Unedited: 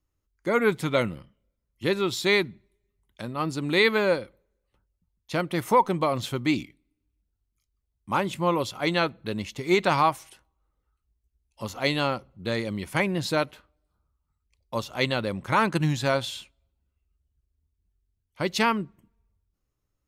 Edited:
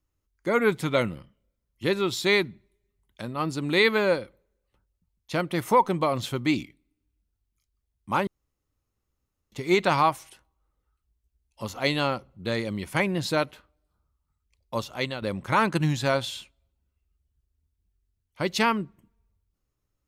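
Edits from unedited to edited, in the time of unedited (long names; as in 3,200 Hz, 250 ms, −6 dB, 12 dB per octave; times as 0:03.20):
0:08.27–0:09.52: fill with room tone
0:14.82–0:15.22: fade out, to −10 dB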